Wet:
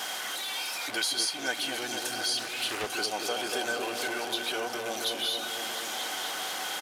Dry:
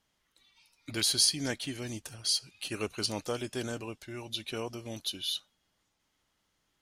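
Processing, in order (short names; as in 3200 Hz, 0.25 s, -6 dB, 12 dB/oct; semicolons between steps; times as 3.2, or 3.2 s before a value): zero-crossing step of -33.5 dBFS; HPF 490 Hz 12 dB/oct; compressor 2.5:1, threshold -36 dBFS, peak gain reduction 11 dB; small resonant body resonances 750/1500/3200 Hz, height 12 dB, ringing for 60 ms; on a send: repeats that get brighter 0.237 s, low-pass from 750 Hz, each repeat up 1 oct, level -3 dB; on the sum: downsampling 32000 Hz; 2.37–2.87 Doppler distortion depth 0.37 ms; gain +4.5 dB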